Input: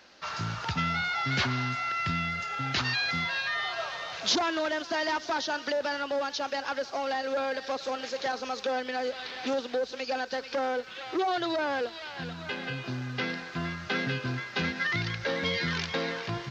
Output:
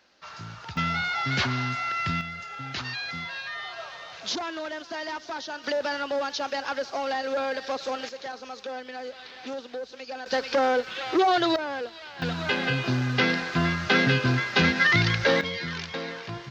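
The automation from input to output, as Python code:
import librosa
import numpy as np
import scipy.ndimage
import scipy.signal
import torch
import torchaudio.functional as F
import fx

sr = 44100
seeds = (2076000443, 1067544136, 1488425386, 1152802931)

y = fx.gain(x, sr, db=fx.steps((0.0, -7.0), (0.77, 2.0), (2.21, -4.5), (5.64, 2.0), (8.09, -5.5), (10.26, 7.0), (11.56, -2.0), (12.22, 9.0), (15.41, -2.5)))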